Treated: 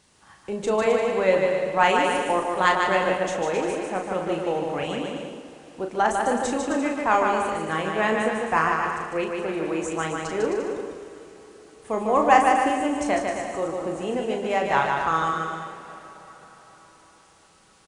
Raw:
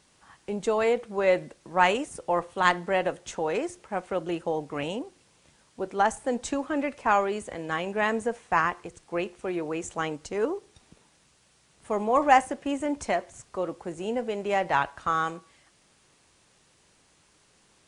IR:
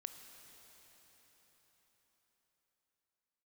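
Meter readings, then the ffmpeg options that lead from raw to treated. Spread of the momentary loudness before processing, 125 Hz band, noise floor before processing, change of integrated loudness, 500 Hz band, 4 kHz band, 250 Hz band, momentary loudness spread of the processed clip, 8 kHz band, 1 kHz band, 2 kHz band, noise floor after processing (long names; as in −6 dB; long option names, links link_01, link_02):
10 LU, +4.0 dB, −63 dBFS, +4.0 dB, +4.0 dB, +4.5 dB, +4.0 dB, 12 LU, +4.5 dB, +4.5 dB, +4.0 dB, −55 dBFS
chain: -filter_complex "[0:a]aecho=1:1:150|262.5|346.9|410.2|457.6:0.631|0.398|0.251|0.158|0.1,asplit=2[link_01][link_02];[1:a]atrim=start_sample=2205,adelay=37[link_03];[link_02][link_03]afir=irnorm=-1:irlink=0,volume=-1dB[link_04];[link_01][link_04]amix=inputs=2:normalize=0,volume=1dB"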